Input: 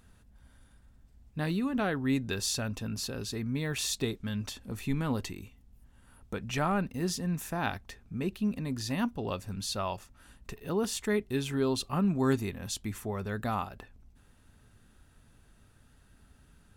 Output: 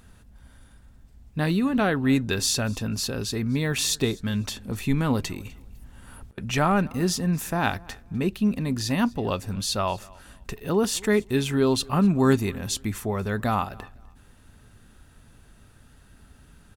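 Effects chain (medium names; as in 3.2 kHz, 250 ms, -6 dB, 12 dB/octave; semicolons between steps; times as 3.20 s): 5.41–6.38 s: compressor with a negative ratio -48 dBFS, ratio -0.5; feedback delay 252 ms, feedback 26%, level -24 dB; trim +7.5 dB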